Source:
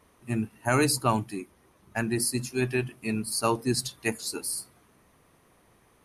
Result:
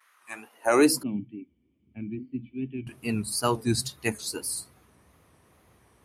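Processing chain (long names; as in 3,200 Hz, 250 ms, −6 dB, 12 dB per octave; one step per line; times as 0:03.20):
tape wow and flutter 100 cents
high-pass filter sweep 1,500 Hz → 68 Hz, 0:00.13–0:01.54
0:01.03–0:02.87: formant resonators in series i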